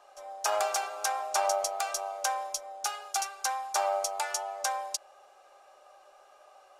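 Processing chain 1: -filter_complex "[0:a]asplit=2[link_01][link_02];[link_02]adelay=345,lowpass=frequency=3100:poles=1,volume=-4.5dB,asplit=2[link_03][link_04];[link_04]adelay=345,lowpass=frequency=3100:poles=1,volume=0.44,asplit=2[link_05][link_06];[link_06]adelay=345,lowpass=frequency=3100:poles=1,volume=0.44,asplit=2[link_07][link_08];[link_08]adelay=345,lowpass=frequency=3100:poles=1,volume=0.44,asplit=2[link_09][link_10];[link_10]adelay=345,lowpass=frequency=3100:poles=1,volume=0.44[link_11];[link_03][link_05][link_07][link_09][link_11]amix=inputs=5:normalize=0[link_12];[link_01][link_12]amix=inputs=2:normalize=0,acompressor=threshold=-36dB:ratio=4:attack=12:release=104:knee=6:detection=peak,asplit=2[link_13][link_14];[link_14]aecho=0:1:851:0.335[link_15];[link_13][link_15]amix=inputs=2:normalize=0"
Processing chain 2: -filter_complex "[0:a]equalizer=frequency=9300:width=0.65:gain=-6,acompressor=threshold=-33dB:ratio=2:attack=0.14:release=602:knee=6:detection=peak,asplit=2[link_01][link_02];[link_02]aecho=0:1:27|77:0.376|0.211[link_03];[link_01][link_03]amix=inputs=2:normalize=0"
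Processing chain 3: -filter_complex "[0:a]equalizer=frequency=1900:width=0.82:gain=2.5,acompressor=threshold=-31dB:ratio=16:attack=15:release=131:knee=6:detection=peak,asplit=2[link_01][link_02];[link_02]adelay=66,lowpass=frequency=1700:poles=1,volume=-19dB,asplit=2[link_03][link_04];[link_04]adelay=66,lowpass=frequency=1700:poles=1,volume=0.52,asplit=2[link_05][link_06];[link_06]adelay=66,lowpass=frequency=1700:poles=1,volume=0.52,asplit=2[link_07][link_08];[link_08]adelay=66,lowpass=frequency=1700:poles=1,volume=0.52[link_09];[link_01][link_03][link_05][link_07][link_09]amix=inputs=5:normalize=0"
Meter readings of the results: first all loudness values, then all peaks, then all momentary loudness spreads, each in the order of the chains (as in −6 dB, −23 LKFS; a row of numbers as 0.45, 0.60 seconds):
−37.0, −37.5, −35.0 LKFS; −20.0, −22.5, −17.0 dBFS; 11, 22, 4 LU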